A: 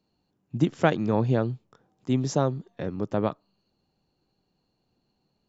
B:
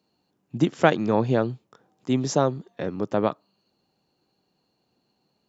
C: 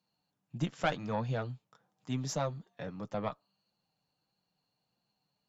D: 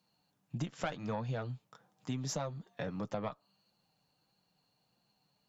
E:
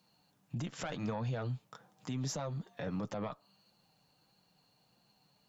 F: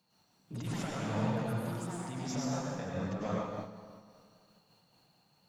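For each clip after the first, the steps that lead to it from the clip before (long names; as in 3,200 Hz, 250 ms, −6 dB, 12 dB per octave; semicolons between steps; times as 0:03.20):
high-pass filter 230 Hz 6 dB per octave; level +4.5 dB
parametric band 350 Hz −12.5 dB 0.88 octaves; tube saturation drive 10 dB, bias 0.7; flanger 1.6 Hz, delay 5.6 ms, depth 1.5 ms, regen −42%
downward compressor 5 to 1, threshold −40 dBFS, peak gain reduction 14 dB; level +5.5 dB
brickwall limiter −35 dBFS, peak gain reduction 11.5 dB; level +5.5 dB
delay with pitch and tempo change per echo 104 ms, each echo +5 semitones, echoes 2, each echo −6 dB; convolution reverb RT60 2.0 s, pre-delay 82 ms, DRR −5 dB; amplitude modulation by smooth noise, depth 55%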